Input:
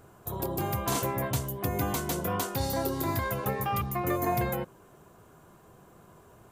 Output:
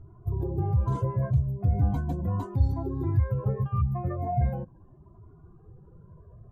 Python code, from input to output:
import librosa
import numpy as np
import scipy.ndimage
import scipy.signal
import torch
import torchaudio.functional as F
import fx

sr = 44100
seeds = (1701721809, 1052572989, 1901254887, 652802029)

y = fx.spec_expand(x, sr, power=1.8)
y = fx.riaa(y, sr, side='playback')
y = fx.comb_cascade(y, sr, direction='rising', hz=0.39)
y = F.gain(torch.from_numpy(y), -1.5).numpy()